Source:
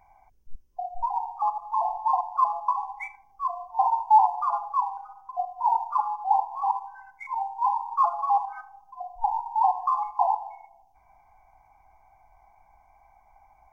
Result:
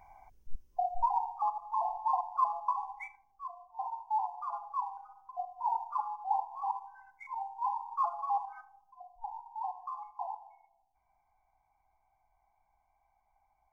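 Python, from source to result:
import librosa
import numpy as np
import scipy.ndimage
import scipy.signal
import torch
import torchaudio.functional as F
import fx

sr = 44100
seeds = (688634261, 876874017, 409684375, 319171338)

y = fx.gain(x, sr, db=fx.line((0.83, 1.5), (1.5, -6.5), (2.93, -6.5), (3.57, -15.5), (4.09, -15.5), (4.85, -9.0), (8.51, -9.0), (9.2, -16.0)))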